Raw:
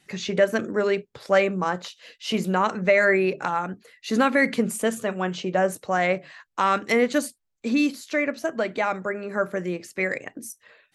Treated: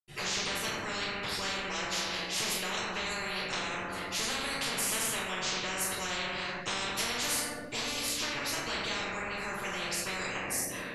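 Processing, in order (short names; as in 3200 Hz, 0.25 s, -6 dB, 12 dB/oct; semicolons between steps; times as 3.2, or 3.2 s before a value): compressor 2:1, threshold -23 dBFS, peak gain reduction 5.5 dB; reverb RT60 0.95 s, pre-delay 78 ms; spectral compressor 10:1; gain -5.5 dB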